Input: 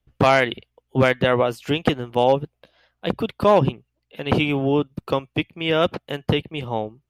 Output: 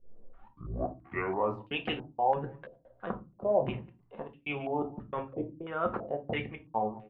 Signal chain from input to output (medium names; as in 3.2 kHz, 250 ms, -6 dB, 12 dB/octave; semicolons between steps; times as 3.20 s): tape start-up on the opening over 1.68 s; reverse; compression 8:1, threshold -29 dBFS, peak gain reduction 18 dB; reverse; speakerphone echo 200 ms, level -20 dB; upward compressor, threshold -33 dBFS; trance gate "xxxxx.xxx..x" 158 bpm -60 dB; on a send at -4 dB: reverberation RT60 0.30 s, pre-delay 3 ms; on the sum: dynamic bell 760 Hz, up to +4 dB, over -40 dBFS, Q 0.83; step-sequenced low-pass 3 Hz 520–2600 Hz; trim -6.5 dB